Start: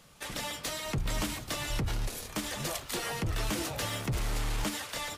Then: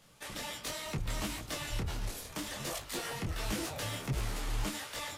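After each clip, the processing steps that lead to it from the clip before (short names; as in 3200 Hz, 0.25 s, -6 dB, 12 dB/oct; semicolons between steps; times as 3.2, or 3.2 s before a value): detuned doubles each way 49 cents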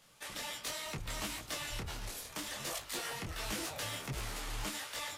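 low shelf 490 Hz -7.5 dB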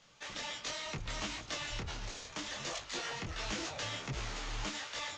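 elliptic low-pass 6800 Hz, stop band 50 dB; gain +1.5 dB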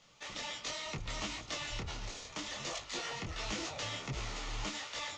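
notch 1600 Hz, Q 9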